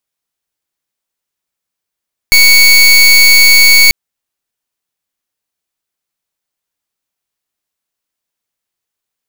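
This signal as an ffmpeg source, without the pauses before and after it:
-f lavfi -i "aevalsrc='0.596*(2*lt(mod(2230*t,1),0.26)-1)':d=1.59:s=44100"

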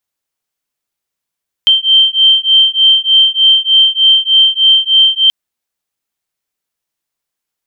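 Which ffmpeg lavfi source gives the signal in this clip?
-f lavfi -i "aevalsrc='0.355*(sin(2*PI*3130*t)+sin(2*PI*3133.3*t))':d=3.63:s=44100"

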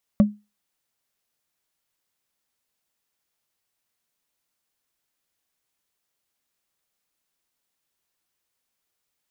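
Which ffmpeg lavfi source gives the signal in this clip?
-f lavfi -i "aevalsrc='0.398*pow(10,-3*t/0.25)*sin(2*PI*208*t)+0.126*pow(10,-3*t/0.074)*sin(2*PI*573.5*t)+0.0398*pow(10,-3*t/0.033)*sin(2*PI*1124*t)+0.0126*pow(10,-3*t/0.018)*sin(2*PI*1858.1*t)+0.00398*pow(10,-3*t/0.011)*sin(2*PI*2774.7*t)':d=0.45:s=44100"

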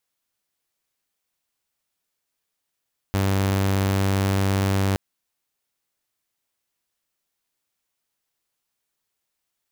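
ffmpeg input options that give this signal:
-f lavfi -i "aevalsrc='0.15*(2*mod(97.3*t,1)-1)':d=1.82:s=44100"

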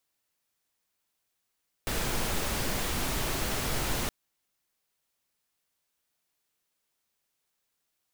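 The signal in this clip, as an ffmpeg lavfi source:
-f lavfi -i "anoisesrc=c=pink:a=0.162:d=2.22:r=44100:seed=1"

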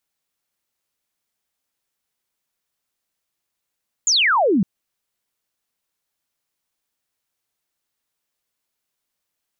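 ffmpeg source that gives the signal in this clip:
-f lavfi -i "aevalsrc='0.211*clip(t/0.002,0,1)*clip((0.56-t)/0.002,0,1)*sin(2*PI*7300*0.56/log(170/7300)*(exp(log(170/7300)*t/0.56)-1))':d=0.56:s=44100"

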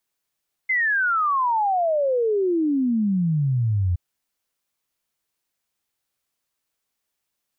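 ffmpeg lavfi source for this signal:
-f lavfi -i "aevalsrc='0.126*clip(min(t,3.27-t)/0.01,0,1)*sin(2*PI*2100*3.27/log(85/2100)*(exp(log(85/2100)*t/3.27)-1))':d=3.27:s=44100"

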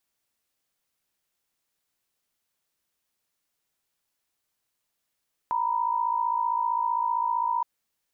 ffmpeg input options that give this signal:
-f lavfi -i "aevalsrc='0.0501*(sin(2*PI*932.33*t)+sin(2*PI*987.77*t))':d=2.12:s=44100"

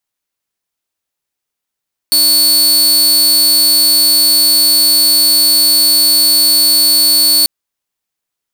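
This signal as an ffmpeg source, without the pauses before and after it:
-f lavfi -i "aevalsrc='0.596*(2*mod(4440*t,1)-1)':d=5.34:s=44100"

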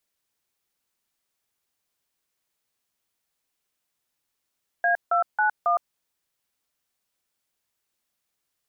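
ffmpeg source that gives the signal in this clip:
-f lavfi -i "aevalsrc='0.0891*clip(min(mod(t,0.273),0.112-mod(t,0.273))/0.002,0,1)*(eq(floor(t/0.273),0)*(sin(2*PI*697*mod(t,0.273))+sin(2*PI*1633*mod(t,0.273)))+eq(floor(t/0.273),1)*(sin(2*PI*697*mod(t,0.273))+sin(2*PI*1336*mod(t,0.273)))+eq(floor(t/0.273),2)*(sin(2*PI*852*mod(t,0.273))+sin(2*PI*1477*mod(t,0.273)))+eq(floor(t/0.273),3)*(sin(2*PI*697*mod(t,0.273))+sin(2*PI*1209*mod(t,0.273))))':d=1.092:s=44100"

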